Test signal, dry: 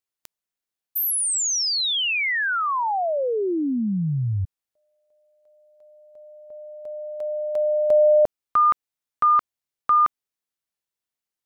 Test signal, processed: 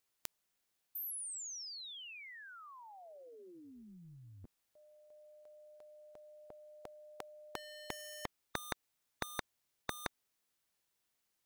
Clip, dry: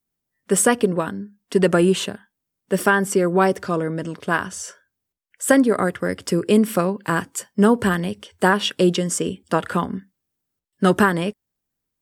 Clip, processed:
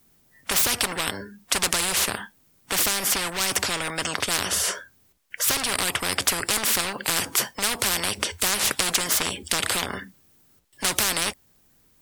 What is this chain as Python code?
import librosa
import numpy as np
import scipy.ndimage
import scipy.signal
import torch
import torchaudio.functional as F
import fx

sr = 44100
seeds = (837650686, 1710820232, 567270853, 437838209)

p1 = 10.0 ** (-19.0 / 20.0) * (np.abs((x / 10.0 ** (-19.0 / 20.0) + 3.0) % 4.0 - 2.0) - 1.0)
p2 = x + F.gain(torch.from_numpy(p1), -6.5).numpy()
p3 = fx.spectral_comp(p2, sr, ratio=10.0)
y = F.gain(torch.from_numpy(p3), 1.5).numpy()